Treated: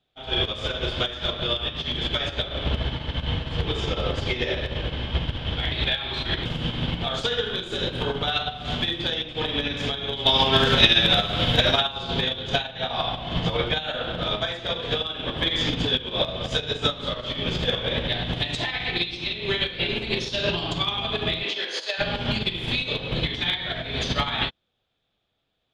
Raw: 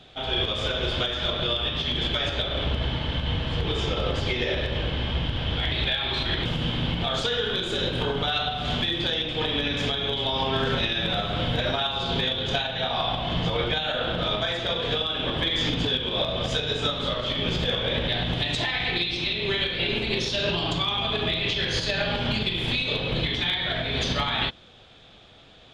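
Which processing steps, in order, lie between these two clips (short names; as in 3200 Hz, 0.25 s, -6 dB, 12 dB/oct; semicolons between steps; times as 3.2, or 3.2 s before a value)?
10.26–11.81 high shelf 2700 Hz +8 dB; 21.43–21.98 HPF 210 Hz -> 530 Hz 24 dB/oct; upward expander 2.5:1, over -42 dBFS; gain +8.5 dB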